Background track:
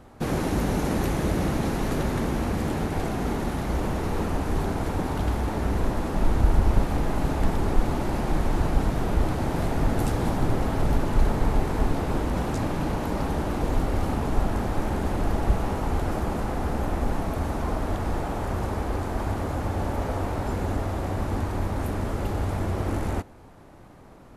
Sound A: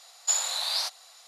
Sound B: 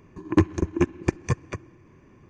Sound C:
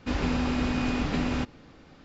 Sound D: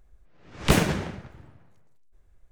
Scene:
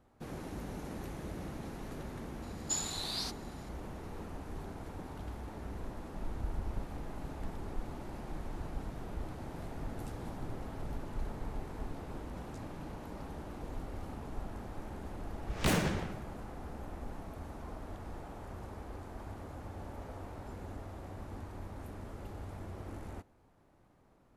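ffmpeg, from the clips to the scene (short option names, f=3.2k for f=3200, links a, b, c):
-filter_complex "[0:a]volume=-17.5dB[a];[4:a]asoftclip=type=tanh:threshold=-17.5dB[b];[1:a]atrim=end=1.27,asetpts=PTS-STARTPTS,volume=-9.5dB,afade=t=in:d=0.004:c=hsin,afade=t=out:st=1.266:d=0.004:c=hsin,adelay=2420[c];[b]atrim=end=2.51,asetpts=PTS-STARTPTS,volume=-5dB,afade=t=in:d=0.004:c=hsin,afade=t=out:st=2.506:d=0.004:c=hsin,adelay=14960[d];[a][c][d]amix=inputs=3:normalize=0"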